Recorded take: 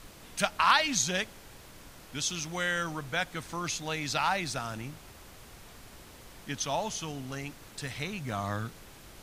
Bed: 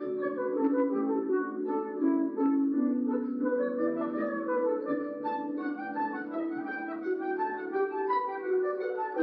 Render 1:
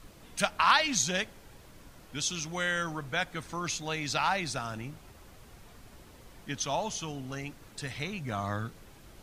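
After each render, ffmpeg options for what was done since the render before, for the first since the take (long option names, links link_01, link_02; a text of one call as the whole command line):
ffmpeg -i in.wav -af "afftdn=noise_reduction=6:noise_floor=-51" out.wav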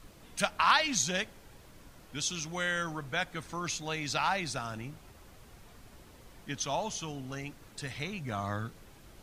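ffmpeg -i in.wav -af "volume=-1.5dB" out.wav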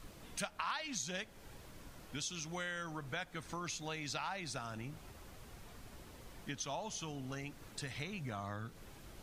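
ffmpeg -i in.wav -af "acompressor=threshold=-41dB:ratio=3" out.wav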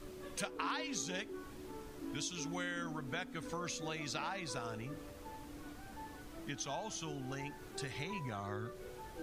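ffmpeg -i in.wav -i bed.wav -filter_complex "[1:a]volume=-18.5dB[link_01];[0:a][link_01]amix=inputs=2:normalize=0" out.wav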